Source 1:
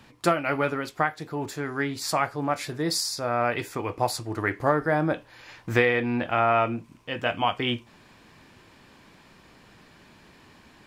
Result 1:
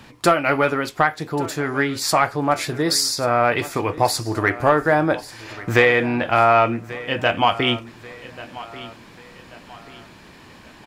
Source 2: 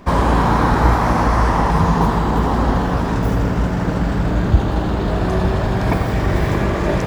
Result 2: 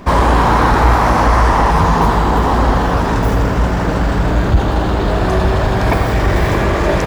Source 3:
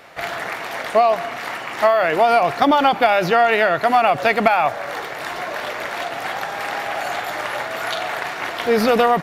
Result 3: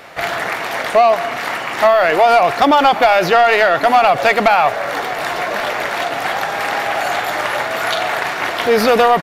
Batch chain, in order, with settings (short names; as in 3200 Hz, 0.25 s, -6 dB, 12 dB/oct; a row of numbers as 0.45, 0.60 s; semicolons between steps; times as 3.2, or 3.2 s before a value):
dynamic EQ 170 Hz, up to -6 dB, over -32 dBFS, Q 0.81; soft clip -9.5 dBFS; feedback echo 1.137 s, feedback 40%, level -17.5 dB; normalise peaks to -3 dBFS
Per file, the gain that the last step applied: +8.0, +6.5, +6.5 dB